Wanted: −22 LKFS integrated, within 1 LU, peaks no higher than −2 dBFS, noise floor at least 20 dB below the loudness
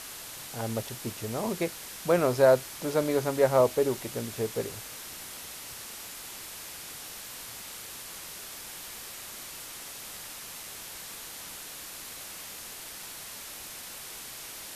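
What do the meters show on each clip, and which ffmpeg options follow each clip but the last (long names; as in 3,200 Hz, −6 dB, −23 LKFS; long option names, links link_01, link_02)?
background noise floor −43 dBFS; target noise floor −52 dBFS; integrated loudness −32.0 LKFS; sample peak −9.5 dBFS; target loudness −22.0 LKFS
→ -af "afftdn=noise_reduction=9:noise_floor=-43"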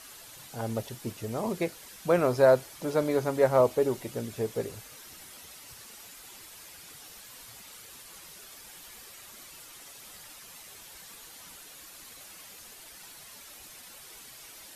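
background noise floor −49 dBFS; integrated loudness −28.0 LKFS; sample peak −9.5 dBFS; target loudness −22.0 LKFS
→ -af "volume=6dB"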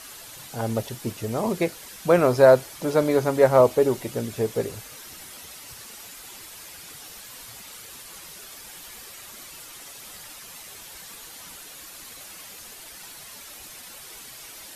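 integrated loudness −22.0 LKFS; sample peak −3.5 dBFS; background noise floor −43 dBFS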